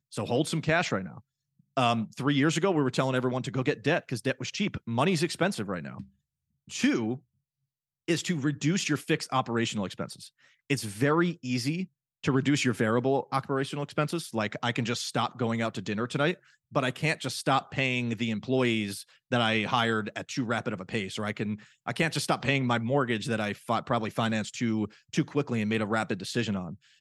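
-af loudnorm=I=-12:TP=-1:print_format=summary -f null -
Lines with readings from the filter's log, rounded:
Input Integrated:    -29.0 LUFS
Input True Peak:     -10.7 dBTP
Input LRA:             2.4 LU
Input Threshold:     -39.3 LUFS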